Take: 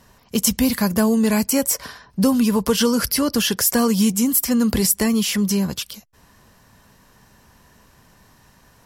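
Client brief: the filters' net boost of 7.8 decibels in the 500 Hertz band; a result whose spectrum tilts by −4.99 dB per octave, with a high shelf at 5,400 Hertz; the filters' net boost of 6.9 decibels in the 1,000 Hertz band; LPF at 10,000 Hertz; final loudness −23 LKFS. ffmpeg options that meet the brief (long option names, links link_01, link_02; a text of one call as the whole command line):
ffmpeg -i in.wav -af "lowpass=10000,equalizer=frequency=500:width_type=o:gain=7.5,equalizer=frequency=1000:width_type=o:gain=6.5,highshelf=frequency=5400:gain=-7,volume=-6dB" out.wav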